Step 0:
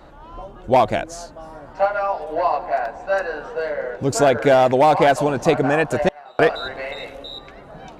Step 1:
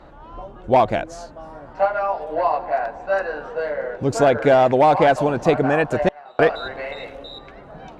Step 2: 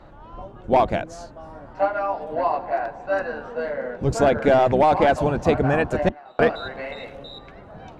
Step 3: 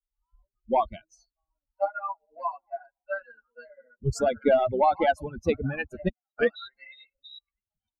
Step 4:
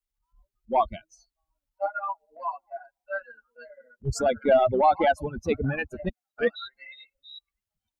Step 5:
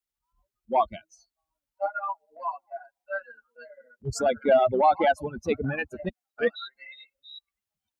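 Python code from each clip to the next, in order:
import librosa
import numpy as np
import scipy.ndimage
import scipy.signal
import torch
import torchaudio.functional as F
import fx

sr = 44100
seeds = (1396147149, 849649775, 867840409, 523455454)

y1 = fx.lowpass(x, sr, hz=3200.0, slope=6)
y2 = fx.octave_divider(y1, sr, octaves=1, level_db=-2.0)
y2 = y2 * 10.0 ** (-2.5 / 20.0)
y3 = fx.bin_expand(y2, sr, power=3.0)
y4 = fx.transient(y3, sr, attack_db=-8, sustain_db=-1)
y4 = y4 * 10.0 ** (4.0 / 20.0)
y5 = fx.highpass(y4, sr, hz=140.0, slope=6)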